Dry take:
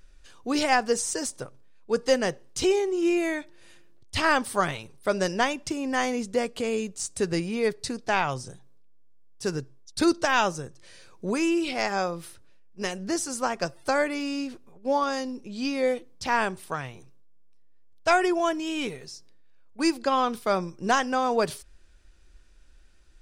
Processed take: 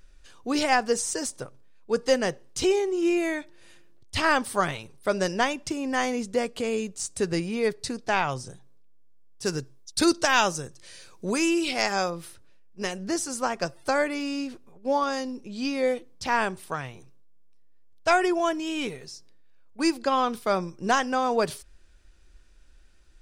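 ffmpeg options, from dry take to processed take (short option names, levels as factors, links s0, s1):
-filter_complex "[0:a]asettb=1/sr,asplit=3[s0][s1][s2];[s0]atrim=end=9.454[s3];[s1]atrim=start=9.45:end=12.1,asetpts=PTS-STARTPTS,afade=t=in:d=0.004:c=qsin,afade=t=out:st=2.646:d=0.004:c=qsin,highshelf=f=3000:g=7.5[s4];[s2]atrim=start=12.096[s5];[s3][s4]acrossfade=d=0.004:c1=hsin:c2=qsin[s6];[s6][s5]acrossfade=d=0.004:c1=qsin:c2=hsin"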